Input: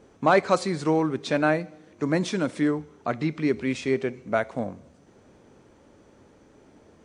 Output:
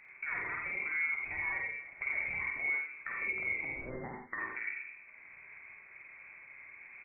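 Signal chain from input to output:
stylus tracing distortion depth 0.085 ms
0:03.70–0:04.39: high-pass filter 1,200 Hz → 540 Hz 24 dB per octave
in parallel at 0 dB: output level in coarse steps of 14 dB
on the sum: brickwall limiter −15.5 dBFS, peak gain reduction 9.5 dB
downward compressor, threshold −30 dBFS, peak gain reduction 10 dB
reverb whose tail is shaped and stops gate 110 ms rising, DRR 2 dB
voice inversion scrambler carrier 2,500 Hz
on a send: multi-tap delay 50/87 ms −3.5/−6 dB
on the sum: level −8.5 dB

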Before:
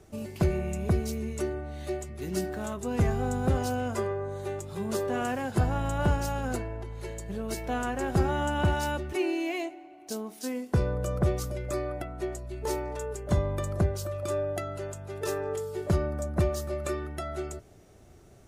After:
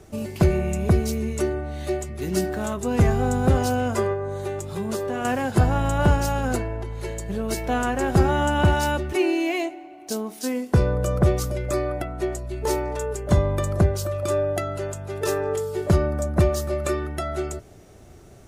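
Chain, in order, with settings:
0:04.13–0:05.25: downward compressor, threshold −31 dBFS, peak gain reduction 6 dB
level +7 dB

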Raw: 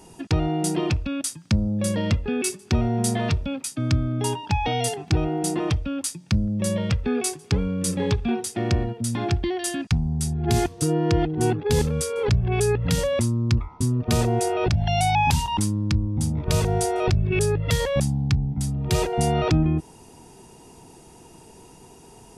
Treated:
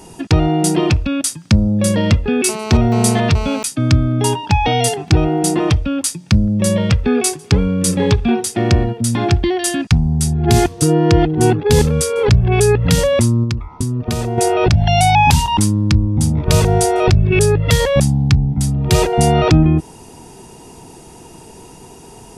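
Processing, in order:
0:02.49–0:03.63: phone interference −34 dBFS
0:13.43–0:14.38: downward compressor 12 to 1, threshold −25 dBFS, peak gain reduction 11 dB
level +9 dB

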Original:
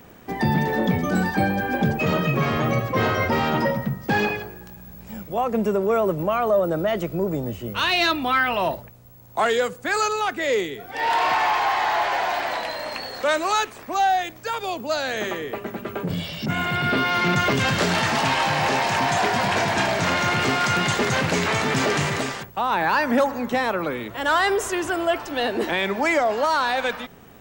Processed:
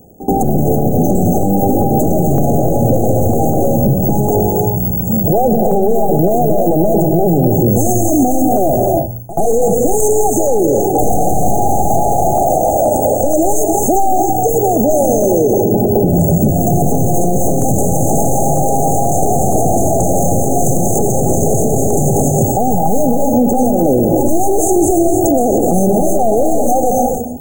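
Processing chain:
wavefolder on the positive side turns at −23.5 dBFS
brick-wall band-stop 840–6,200 Hz
noise gate with hold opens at −35 dBFS
parametric band 2,000 Hz −14.5 dB 1.1 octaves
downward compressor, threshold −27 dBFS, peak gain reduction 9.5 dB
shaped tremolo saw down 2.1 Hz, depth 65%
echo ahead of the sound 81 ms −18 dB
reverb whose tail is shaped and stops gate 330 ms rising, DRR 4 dB
boost into a limiter +29.5 dB
level −2.5 dB

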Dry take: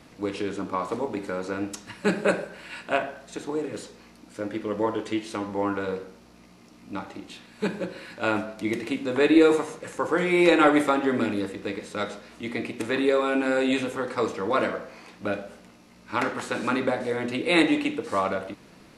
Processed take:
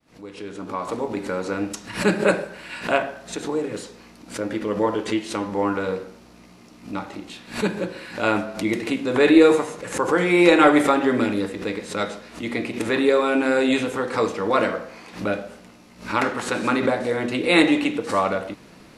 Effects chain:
fade in at the beginning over 1.29 s
background raised ahead of every attack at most 150 dB per second
level +4 dB

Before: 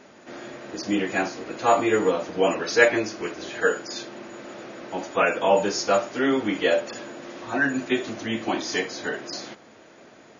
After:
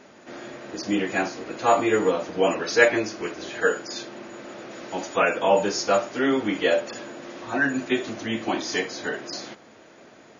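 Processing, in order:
0:04.71–0:05.19: high-shelf EQ 3,900 Hz +8 dB

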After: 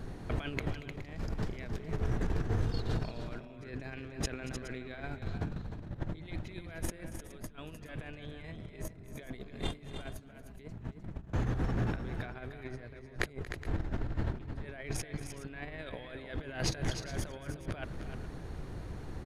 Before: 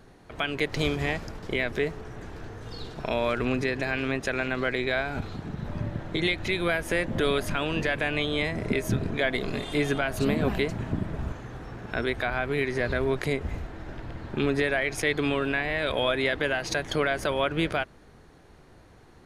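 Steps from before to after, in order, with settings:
low-shelf EQ 250 Hz +11 dB
compressor whose output falls as the input rises −32 dBFS, ratio −0.5
on a send: multi-tap delay 232/305/418 ms −17/−8.5/−15.5 dB
on the sum: level −5.5 dB

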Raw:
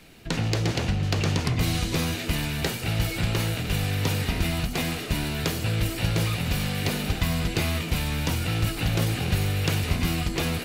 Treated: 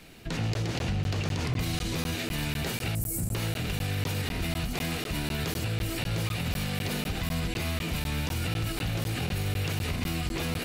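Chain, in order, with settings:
0:02.95–0:03.35: drawn EQ curve 250 Hz 0 dB, 3,600 Hz −23 dB, 8,300 Hz +12 dB
brickwall limiter −22 dBFS, peak gain reduction 10 dB
regular buffer underruns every 0.25 s, samples 512, zero, from 0:00.54

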